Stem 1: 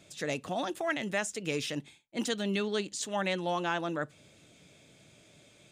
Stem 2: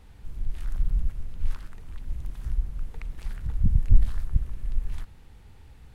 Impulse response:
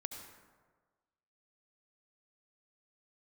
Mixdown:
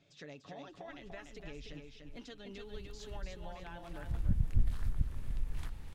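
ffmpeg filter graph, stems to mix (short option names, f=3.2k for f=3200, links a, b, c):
-filter_complex "[0:a]lowpass=f=5.5k:w=0.5412,lowpass=f=5.5k:w=1.3066,aecho=1:1:7.1:0.48,acompressor=threshold=-35dB:ratio=6,volume=-12dB,asplit=2[a][b];[b]volume=-5dB[c];[1:a]lowshelf=f=98:g=-10.5,adelay=650,afade=t=in:st=2.41:d=0.33:silence=0.281838,afade=t=in:st=3.94:d=0.21:silence=0.281838,asplit=2[d][e];[e]volume=-12.5dB[f];[c][f]amix=inputs=2:normalize=0,aecho=0:1:294|588|882|1176:1|0.3|0.09|0.027[g];[a][d][g]amix=inputs=3:normalize=0,lowshelf=f=170:g=4,acompressor=threshold=-34dB:ratio=1.5"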